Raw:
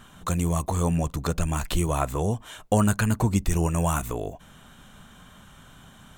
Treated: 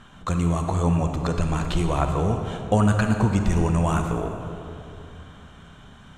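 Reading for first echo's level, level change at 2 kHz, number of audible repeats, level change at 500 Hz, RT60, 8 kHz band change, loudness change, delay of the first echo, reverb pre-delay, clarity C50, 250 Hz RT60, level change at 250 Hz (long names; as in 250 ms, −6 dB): no echo audible, +2.0 dB, no echo audible, +2.5 dB, 2.9 s, −6.0 dB, +2.5 dB, no echo audible, 34 ms, 5.0 dB, 3.3 s, +3.0 dB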